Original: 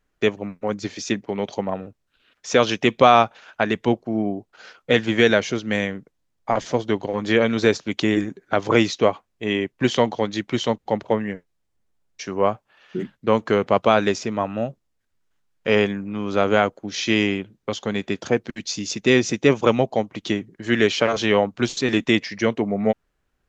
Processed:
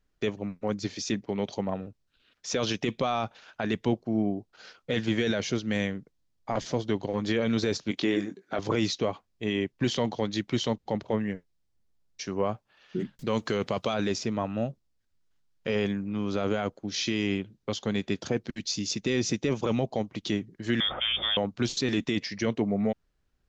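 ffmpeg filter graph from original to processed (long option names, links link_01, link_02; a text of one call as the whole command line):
ffmpeg -i in.wav -filter_complex "[0:a]asettb=1/sr,asplit=3[link_01][link_02][link_03];[link_01]atrim=end=7.914[link_04];[link_02]atrim=start=7.91:end=8.59,asetpts=PTS-STARTPTS,afade=type=in:duration=0.004:curve=qsin,afade=type=out:start_time=0.676:duration=0.004:curve=qsin,highpass=210,acrossover=split=6000[link_05][link_06];[link_06]acompressor=threshold=-60dB:ratio=4:attack=1:release=60[link_07];[link_05][link_07]amix=inputs=2:normalize=0,asplit=2[link_08][link_09];[link_09]adelay=21,volume=-9dB[link_10];[link_08][link_10]amix=inputs=2:normalize=0,atrim=end_sample=29988[link_11];[link_03]atrim=start=8.586[link_12];[link_04][link_11]acrossfade=duration=0.004:curve1=hsin:curve2=qsin[link_13];[link_13][link_12]acrossfade=duration=0.004:curve1=qsin:curve2=hsin,asettb=1/sr,asplit=3[link_14][link_15][link_16];[link_14]atrim=end=13.194[link_17];[link_15]atrim=start=13.19:end=13.94,asetpts=PTS-STARTPTS,afade=type=in:duration=0.004:curve=qsin,afade=type=out:start_time=0.746:duration=0.004:curve=qsin,highshelf=frequency=2500:gain=10.5,acompressor=mode=upward:threshold=-27dB:ratio=2.5:attack=3.2:release=140:knee=2.83:detection=peak[link_18];[link_16]atrim=start=13.936[link_19];[link_17][link_18]acrossfade=duration=0.004:curve1=hsin:curve2=qsin[link_20];[link_20][link_19]acrossfade=duration=0.004:curve1=qsin:curve2=hsin,asettb=1/sr,asplit=3[link_21][link_22][link_23];[link_21]atrim=end=20.804[link_24];[link_22]atrim=start=20.8:end=21.37,asetpts=PTS-STARTPTS,afade=type=in:duration=0.004:curve=qsin,afade=type=out:start_time=0.566:duration=0.004:curve=qsin,lowpass=frequency=3100:width_type=q:width=0.5098,lowpass=frequency=3100:width_type=q:width=0.6013,lowpass=frequency=3100:width_type=q:width=0.9,lowpass=frequency=3100:width_type=q:width=2.563,afreqshift=-3700,aeval=exprs='val(0)+0.00355*(sin(2*PI*60*n/s)+sin(2*PI*2*60*n/s)/2+sin(2*PI*3*60*n/s)/3+sin(2*PI*4*60*n/s)/4+sin(2*PI*5*60*n/s)/5)':channel_layout=same[link_25];[link_23]atrim=start=21.366[link_26];[link_24][link_25]acrossfade=duration=0.004:curve1=hsin:curve2=qsin[link_27];[link_27][link_26]acrossfade=duration=0.004:curve1=qsin:curve2=hsin,equalizer=frequency=4700:width_type=o:width=1.2:gain=7,alimiter=limit=-11.5dB:level=0:latency=1:release=12,lowshelf=frequency=300:gain=8,volume=-8dB" out.wav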